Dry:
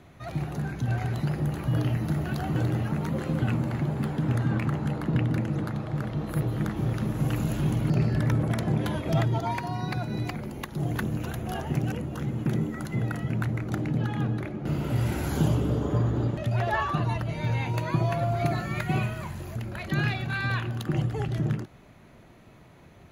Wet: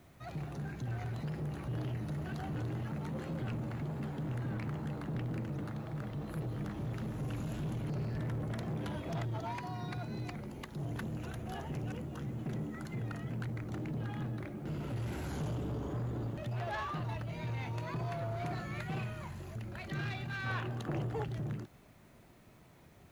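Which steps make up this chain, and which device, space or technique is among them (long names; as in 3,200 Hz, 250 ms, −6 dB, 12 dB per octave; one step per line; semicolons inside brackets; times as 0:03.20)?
compact cassette (soft clipping −25.5 dBFS, distortion −11 dB; low-pass filter 10,000 Hz 12 dB per octave; tape wow and flutter; white noise bed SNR 35 dB)
0:20.46–0:21.24: parametric band 670 Hz +7 dB 2.6 octaves
level −7.5 dB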